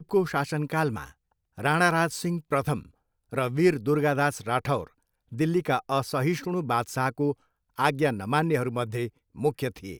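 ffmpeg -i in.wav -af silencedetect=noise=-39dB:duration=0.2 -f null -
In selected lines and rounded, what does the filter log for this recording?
silence_start: 1.09
silence_end: 1.58 | silence_duration: 0.48
silence_start: 2.83
silence_end: 3.32 | silence_duration: 0.49
silence_start: 4.87
silence_end: 5.32 | silence_duration: 0.45
silence_start: 7.33
silence_end: 7.78 | silence_duration: 0.45
silence_start: 9.09
silence_end: 9.36 | silence_duration: 0.28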